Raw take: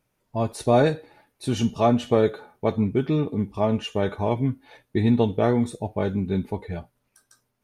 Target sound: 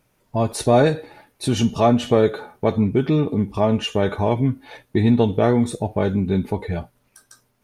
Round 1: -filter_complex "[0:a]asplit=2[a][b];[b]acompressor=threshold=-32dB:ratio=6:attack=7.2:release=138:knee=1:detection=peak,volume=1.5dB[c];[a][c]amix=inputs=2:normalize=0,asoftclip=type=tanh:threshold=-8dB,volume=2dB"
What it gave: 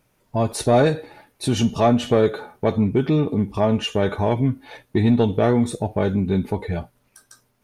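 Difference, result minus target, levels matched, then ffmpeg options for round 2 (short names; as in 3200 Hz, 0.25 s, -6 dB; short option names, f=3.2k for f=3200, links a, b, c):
soft clip: distortion +12 dB
-filter_complex "[0:a]asplit=2[a][b];[b]acompressor=threshold=-32dB:ratio=6:attack=7.2:release=138:knee=1:detection=peak,volume=1.5dB[c];[a][c]amix=inputs=2:normalize=0,asoftclip=type=tanh:threshold=-1dB,volume=2dB"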